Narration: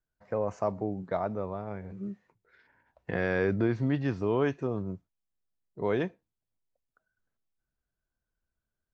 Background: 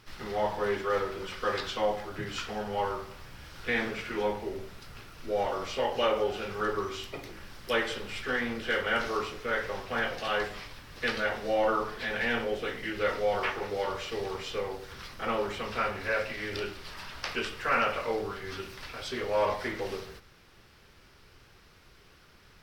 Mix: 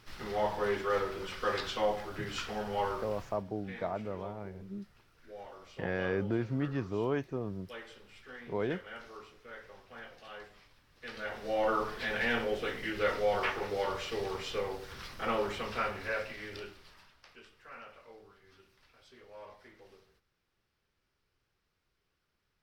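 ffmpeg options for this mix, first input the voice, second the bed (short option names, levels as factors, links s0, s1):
-filter_complex "[0:a]adelay=2700,volume=0.562[s0];[1:a]volume=5.31,afade=t=out:st=3.2:d=0.24:silence=0.158489,afade=t=in:st=11.01:d=0.83:silence=0.149624,afade=t=out:st=15.49:d=1.68:silence=0.0841395[s1];[s0][s1]amix=inputs=2:normalize=0"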